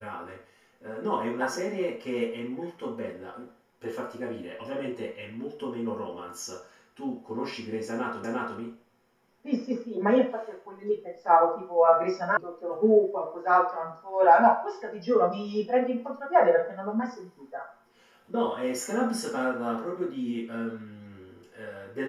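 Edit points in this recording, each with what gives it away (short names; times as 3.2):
8.24 repeat of the last 0.35 s
12.37 sound cut off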